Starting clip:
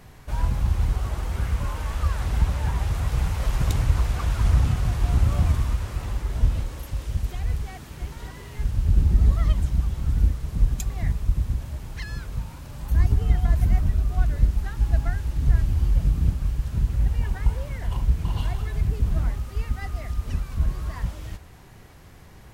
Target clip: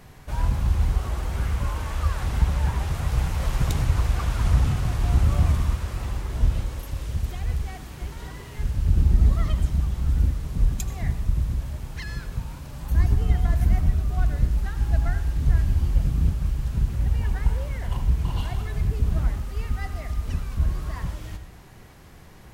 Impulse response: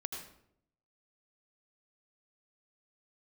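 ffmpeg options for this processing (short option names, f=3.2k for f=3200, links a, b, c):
-filter_complex "[0:a]bandreject=f=50:t=h:w=6,bandreject=f=100:t=h:w=6,asplit=2[a][b];[1:a]atrim=start_sample=2205[c];[b][c]afir=irnorm=-1:irlink=0,volume=-4dB[d];[a][d]amix=inputs=2:normalize=0,volume=-3dB"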